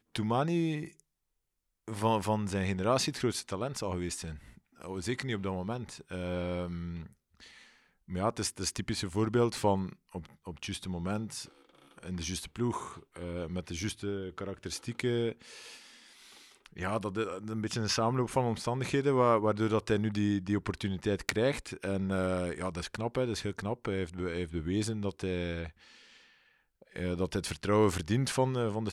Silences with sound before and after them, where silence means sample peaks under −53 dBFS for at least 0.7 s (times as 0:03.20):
0:01.00–0:01.88